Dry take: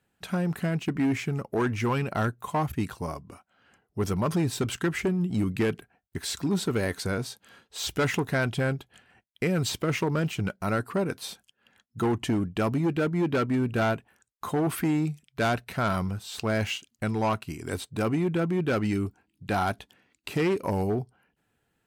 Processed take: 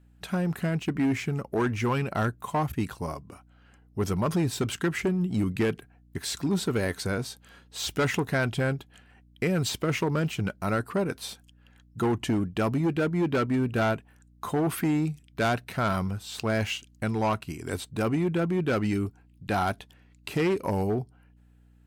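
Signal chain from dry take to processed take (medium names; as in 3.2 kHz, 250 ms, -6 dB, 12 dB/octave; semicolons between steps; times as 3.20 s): wow and flutter 18 cents; hum 60 Hz, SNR 29 dB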